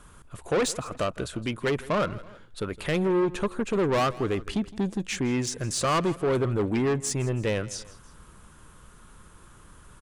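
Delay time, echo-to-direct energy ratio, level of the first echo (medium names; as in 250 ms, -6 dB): 163 ms, -18.0 dB, -19.0 dB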